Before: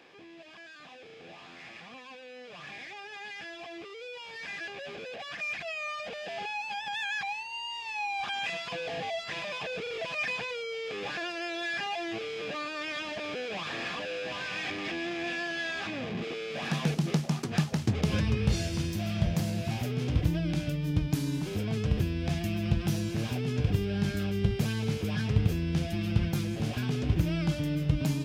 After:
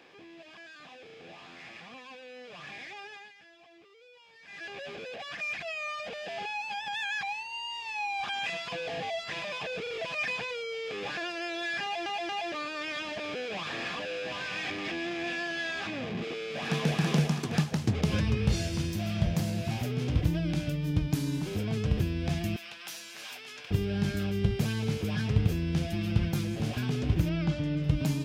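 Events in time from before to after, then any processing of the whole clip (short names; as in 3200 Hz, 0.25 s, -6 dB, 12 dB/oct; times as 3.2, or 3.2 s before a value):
3.04–4.74 dip -14 dB, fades 0.29 s
11.83 stutter in place 0.23 s, 3 plays
16.36–16.98 echo throw 0.33 s, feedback 35%, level -0.5 dB
22.56–23.71 HPF 1200 Hz
27.29–27.84 air absorption 99 m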